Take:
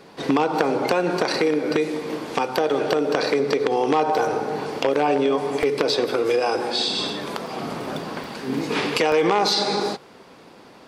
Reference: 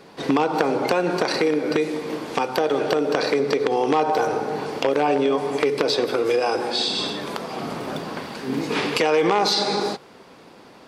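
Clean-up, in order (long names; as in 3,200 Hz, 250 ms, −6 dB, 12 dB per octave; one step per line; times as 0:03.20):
repair the gap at 0:05.63/0:07.47/0:08.24/0:09.12, 1.7 ms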